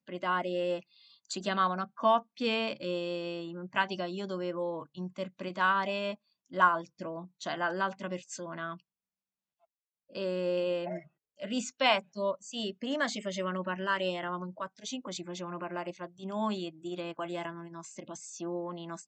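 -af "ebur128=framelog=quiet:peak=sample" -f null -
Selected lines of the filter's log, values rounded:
Integrated loudness:
  I:         -33.3 LUFS
  Threshold: -43.6 LUFS
Loudness range:
  LRA:         6.4 LU
  Threshold: -53.8 LUFS
  LRA low:   -38.1 LUFS
  LRA high:  -31.7 LUFS
Sample peak:
  Peak:      -10.8 dBFS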